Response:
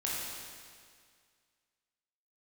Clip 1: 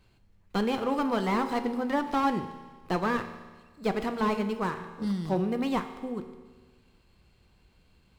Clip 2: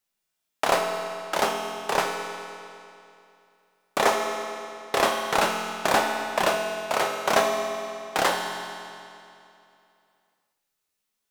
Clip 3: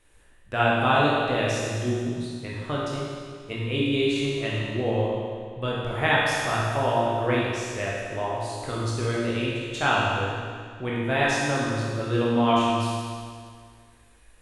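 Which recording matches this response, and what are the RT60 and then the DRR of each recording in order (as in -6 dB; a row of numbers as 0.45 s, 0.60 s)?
3; 1.4 s, 2.6 s, 2.0 s; 8.0 dB, 1.5 dB, -6.0 dB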